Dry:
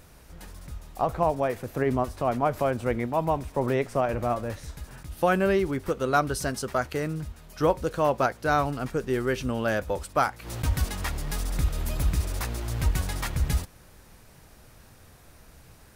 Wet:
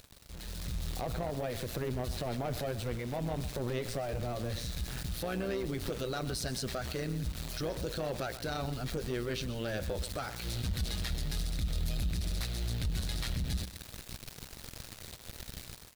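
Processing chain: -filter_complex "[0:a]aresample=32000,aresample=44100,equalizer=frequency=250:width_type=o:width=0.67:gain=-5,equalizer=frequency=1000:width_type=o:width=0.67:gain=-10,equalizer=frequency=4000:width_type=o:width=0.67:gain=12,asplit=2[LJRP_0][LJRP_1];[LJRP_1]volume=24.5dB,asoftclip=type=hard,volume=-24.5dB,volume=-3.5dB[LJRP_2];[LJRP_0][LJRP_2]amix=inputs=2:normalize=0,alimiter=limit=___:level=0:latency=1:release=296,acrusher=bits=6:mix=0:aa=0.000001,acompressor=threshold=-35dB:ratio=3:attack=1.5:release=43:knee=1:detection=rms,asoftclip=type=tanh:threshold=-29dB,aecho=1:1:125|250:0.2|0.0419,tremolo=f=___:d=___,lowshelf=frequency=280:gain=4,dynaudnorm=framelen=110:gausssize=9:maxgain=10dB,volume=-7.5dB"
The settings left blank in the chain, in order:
-14dB, 120, 0.667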